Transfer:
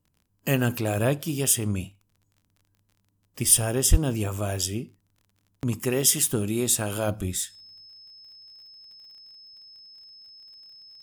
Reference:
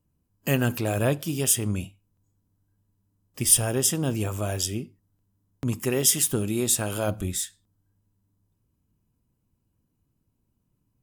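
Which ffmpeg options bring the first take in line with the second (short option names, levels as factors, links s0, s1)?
-filter_complex "[0:a]adeclick=t=4,bandreject=f=5200:w=30,asplit=3[s0][s1][s2];[s0]afade=t=out:st=3.9:d=0.02[s3];[s1]highpass=f=140:w=0.5412,highpass=f=140:w=1.3066,afade=t=in:st=3.9:d=0.02,afade=t=out:st=4.02:d=0.02[s4];[s2]afade=t=in:st=4.02:d=0.02[s5];[s3][s4][s5]amix=inputs=3:normalize=0,asetnsamples=n=441:p=0,asendcmd='7.86 volume volume 7.5dB',volume=1"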